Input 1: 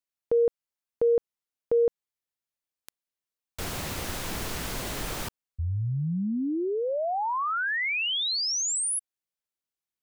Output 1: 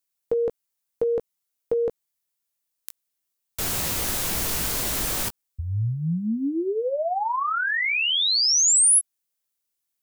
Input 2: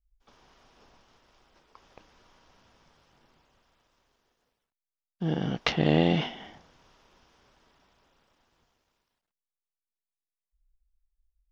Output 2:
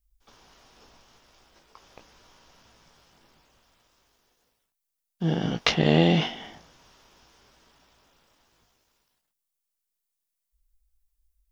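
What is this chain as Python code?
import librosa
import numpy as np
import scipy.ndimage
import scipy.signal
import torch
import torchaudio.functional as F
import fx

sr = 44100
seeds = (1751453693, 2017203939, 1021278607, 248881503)

y = fx.high_shelf(x, sr, hz=5600.0, db=11.5)
y = fx.doubler(y, sr, ms=18.0, db=-8.0)
y = F.gain(torch.from_numpy(y), 2.0).numpy()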